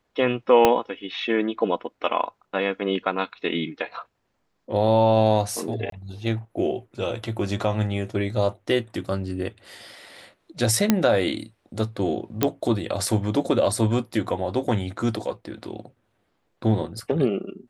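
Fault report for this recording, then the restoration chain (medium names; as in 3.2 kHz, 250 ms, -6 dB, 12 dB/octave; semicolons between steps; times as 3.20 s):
0.65 s: pop -3 dBFS
5.90–5.92 s: dropout 23 ms
10.90 s: pop -3 dBFS
12.43 s: pop -5 dBFS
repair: de-click; interpolate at 5.90 s, 23 ms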